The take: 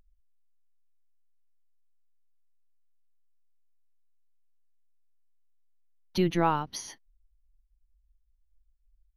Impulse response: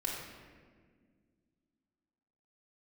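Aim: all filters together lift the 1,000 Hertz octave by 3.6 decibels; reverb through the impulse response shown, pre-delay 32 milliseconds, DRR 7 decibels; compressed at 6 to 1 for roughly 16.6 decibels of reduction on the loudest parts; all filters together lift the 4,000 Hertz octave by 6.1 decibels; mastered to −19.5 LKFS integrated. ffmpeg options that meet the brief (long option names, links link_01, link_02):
-filter_complex "[0:a]equalizer=frequency=1000:width_type=o:gain=4,equalizer=frequency=4000:width_type=o:gain=7.5,acompressor=threshold=-35dB:ratio=6,asplit=2[link_01][link_02];[1:a]atrim=start_sample=2205,adelay=32[link_03];[link_02][link_03]afir=irnorm=-1:irlink=0,volume=-10.5dB[link_04];[link_01][link_04]amix=inputs=2:normalize=0,volume=19.5dB"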